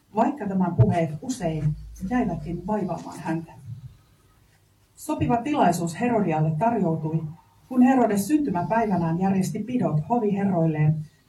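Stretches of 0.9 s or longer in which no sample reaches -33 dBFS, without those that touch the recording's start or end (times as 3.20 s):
3.86–5.02 s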